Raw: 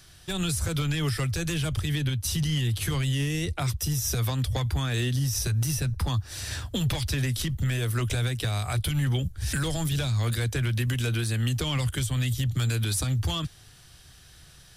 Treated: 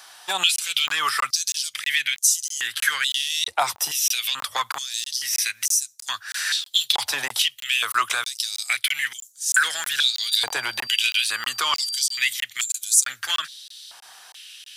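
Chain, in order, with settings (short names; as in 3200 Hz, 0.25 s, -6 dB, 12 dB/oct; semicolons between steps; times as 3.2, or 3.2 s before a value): 10.12–12.27 whine 4700 Hz -44 dBFS; crackling interface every 0.32 s, samples 1024, zero, from 0.56; stepped high-pass 2.3 Hz 860–6800 Hz; gain +7.5 dB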